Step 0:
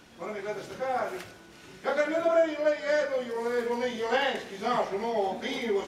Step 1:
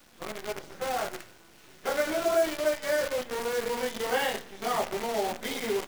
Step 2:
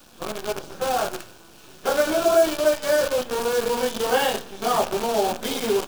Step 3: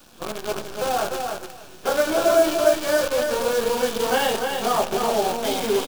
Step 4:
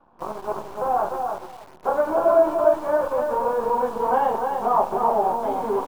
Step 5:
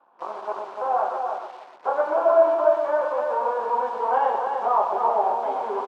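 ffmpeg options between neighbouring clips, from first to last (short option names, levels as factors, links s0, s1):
-af "bandreject=f=60:t=h:w=6,bandreject=f=120:t=h:w=6,bandreject=f=180:t=h:w=6,bandreject=f=240:t=h:w=6,acrusher=bits=6:dc=4:mix=0:aa=0.000001,volume=0.841"
-af "equalizer=f=2000:t=o:w=0.28:g=-12.5,volume=2.37"
-af "aecho=1:1:296|592|888:0.562|0.09|0.0144"
-filter_complex "[0:a]lowpass=f=970:t=q:w=4,asplit=2[s0][s1];[s1]acrusher=bits=5:mix=0:aa=0.000001,volume=0.631[s2];[s0][s2]amix=inputs=2:normalize=0,volume=0.376"
-filter_complex "[0:a]highpass=530,lowpass=4200,asplit=2[s0][s1];[s1]aecho=0:1:121:0.422[s2];[s0][s2]amix=inputs=2:normalize=0"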